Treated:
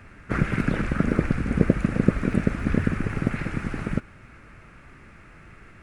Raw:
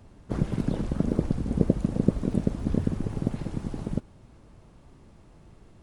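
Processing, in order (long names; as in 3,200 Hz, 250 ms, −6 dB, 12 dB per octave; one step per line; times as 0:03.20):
flat-topped bell 1,800 Hz +16 dB 1.3 octaves
level +3 dB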